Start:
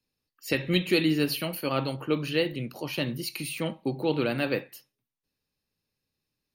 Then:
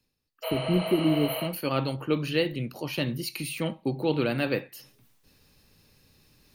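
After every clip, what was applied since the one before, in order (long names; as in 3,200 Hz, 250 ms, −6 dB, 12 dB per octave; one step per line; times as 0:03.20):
healed spectral selection 0:00.46–0:01.42, 460–10,000 Hz after
low-shelf EQ 120 Hz +5.5 dB
reversed playback
upward compression, threshold −42 dBFS
reversed playback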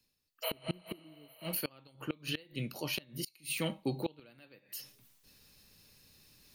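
high-shelf EQ 2,300 Hz +8.5 dB
tuned comb filter 200 Hz, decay 0.32 s, harmonics odd, mix 50%
gate with flip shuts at −22 dBFS, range −27 dB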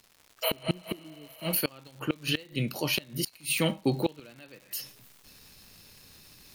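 surface crackle 230 per second −51 dBFS
level +8 dB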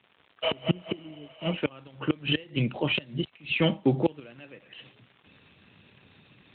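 level +3.5 dB
AMR narrowband 12.2 kbit/s 8,000 Hz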